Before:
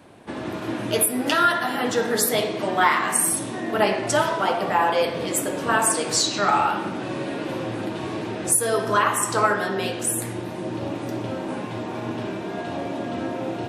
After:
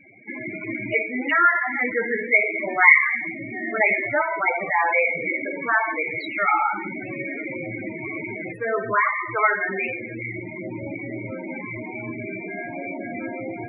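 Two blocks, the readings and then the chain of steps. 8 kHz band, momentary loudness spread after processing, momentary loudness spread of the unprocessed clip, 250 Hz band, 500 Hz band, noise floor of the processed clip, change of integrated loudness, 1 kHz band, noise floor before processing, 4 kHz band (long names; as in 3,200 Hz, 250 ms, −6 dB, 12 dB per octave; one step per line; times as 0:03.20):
below −40 dB, 14 LU, 11 LU, −4.5 dB, −3.5 dB, −35 dBFS, +0.5 dB, −1.5 dB, −32 dBFS, −19.0 dB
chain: low-pass with resonance 2,200 Hz, resonance Q 14
spectral peaks only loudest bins 16
level −2.5 dB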